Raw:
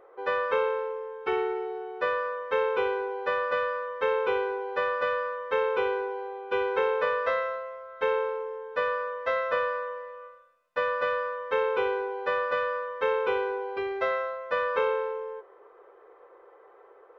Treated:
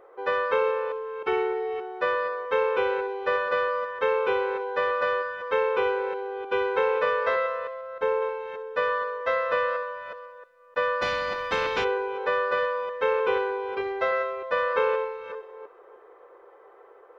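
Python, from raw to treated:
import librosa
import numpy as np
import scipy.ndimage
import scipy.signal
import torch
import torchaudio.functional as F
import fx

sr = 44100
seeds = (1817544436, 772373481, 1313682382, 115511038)

y = fx.reverse_delay(x, sr, ms=307, wet_db=-12.5)
y = fx.peak_eq(y, sr, hz=3100.0, db=-7.0, octaves=2.2, at=(7.81, 8.22))
y = fx.echo_wet_highpass(y, sr, ms=64, feedback_pct=62, hz=3000.0, wet_db=-9.0)
y = fx.spectral_comp(y, sr, ratio=2.0, at=(11.01, 11.83), fade=0.02)
y = F.gain(torch.from_numpy(y), 2.0).numpy()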